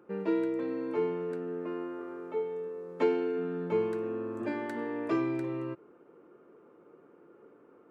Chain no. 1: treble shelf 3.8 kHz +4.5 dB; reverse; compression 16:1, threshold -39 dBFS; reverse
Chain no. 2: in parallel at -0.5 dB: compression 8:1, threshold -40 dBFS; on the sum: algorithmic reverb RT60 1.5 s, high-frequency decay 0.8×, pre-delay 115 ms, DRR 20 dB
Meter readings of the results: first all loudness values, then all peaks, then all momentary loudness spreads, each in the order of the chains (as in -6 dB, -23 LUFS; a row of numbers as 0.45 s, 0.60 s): -43.5 LUFS, -31.0 LUFS; -31.5 dBFS, -15.0 dBFS; 15 LU, 6 LU